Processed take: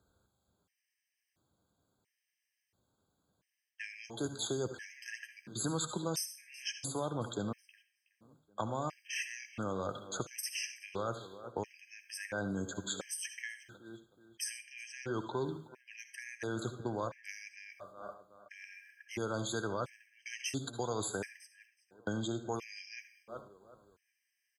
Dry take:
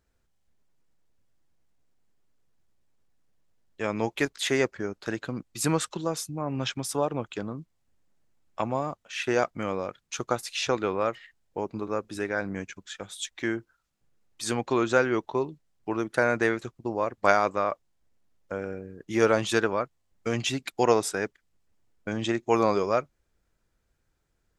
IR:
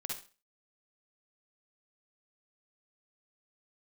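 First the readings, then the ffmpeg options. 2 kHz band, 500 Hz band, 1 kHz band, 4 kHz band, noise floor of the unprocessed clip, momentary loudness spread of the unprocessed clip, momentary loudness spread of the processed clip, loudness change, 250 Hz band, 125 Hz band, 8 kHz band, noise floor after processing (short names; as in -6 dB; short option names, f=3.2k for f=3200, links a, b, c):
-12.0 dB, -13.5 dB, -13.5 dB, -7.5 dB, -74 dBFS, 13 LU, 14 LU, -11.5 dB, -11.0 dB, -7.0 dB, -4.0 dB, under -85 dBFS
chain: -filter_complex "[0:a]areverse,acompressor=threshold=-34dB:ratio=4,areverse,asplit=2[a][b];[b]adelay=371,lowpass=f=4.5k:p=1,volume=-21.5dB,asplit=2[c][d];[d]adelay=371,lowpass=f=4.5k:p=1,volume=0.46,asplit=2[e][f];[f]adelay=371,lowpass=f=4.5k:p=1,volume=0.46[g];[a][c][e][g]amix=inputs=4:normalize=0,agate=range=-7dB:threshold=-56dB:ratio=16:detection=peak,asplit=2[h][i];[1:a]atrim=start_sample=2205,adelay=10[j];[i][j]afir=irnorm=-1:irlink=0,volume=-9dB[k];[h][k]amix=inputs=2:normalize=0,acrossover=split=130|1700|5500[l][m][n][o];[l]acompressor=threshold=-54dB:ratio=4[p];[m]acompressor=threshold=-47dB:ratio=4[q];[n]acompressor=threshold=-55dB:ratio=4[r];[o]acompressor=threshold=-46dB:ratio=4[s];[p][q][r][s]amix=inputs=4:normalize=0,highpass=69,afftfilt=real='re*gt(sin(2*PI*0.73*pts/sr)*(1-2*mod(floor(b*sr/1024/1600),2)),0)':imag='im*gt(sin(2*PI*0.73*pts/sr)*(1-2*mod(floor(b*sr/1024/1600),2)),0)':win_size=1024:overlap=0.75,volume=10.5dB"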